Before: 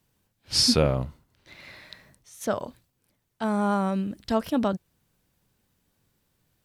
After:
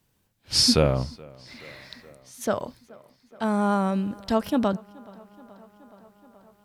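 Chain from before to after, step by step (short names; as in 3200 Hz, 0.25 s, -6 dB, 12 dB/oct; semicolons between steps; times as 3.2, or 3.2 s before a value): tape echo 0.425 s, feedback 81%, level -23 dB, low-pass 5100 Hz; gain +1.5 dB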